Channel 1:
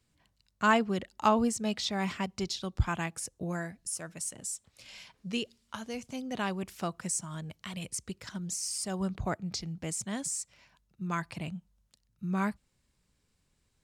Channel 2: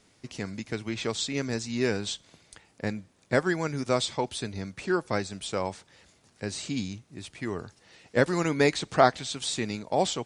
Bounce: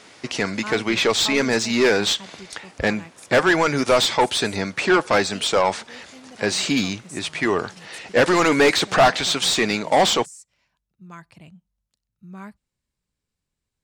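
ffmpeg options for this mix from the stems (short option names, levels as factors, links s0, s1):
-filter_complex "[0:a]volume=0.398[s0];[1:a]asplit=2[s1][s2];[s2]highpass=f=720:p=1,volume=25.1,asoftclip=type=tanh:threshold=0.631[s3];[s1][s3]amix=inputs=2:normalize=0,lowpass=f=3100:p=1,volume=0.501,volume=0.841[s4];[s0][s4]amix=inputs=2:normalize=0"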